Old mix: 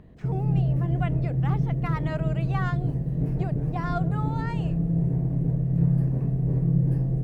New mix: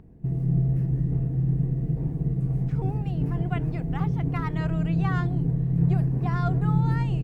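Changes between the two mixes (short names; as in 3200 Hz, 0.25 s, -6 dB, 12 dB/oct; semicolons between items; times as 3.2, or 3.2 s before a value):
speech: entry +2.50 s; master: add bell 580 Hz -12 dB 0.24 oct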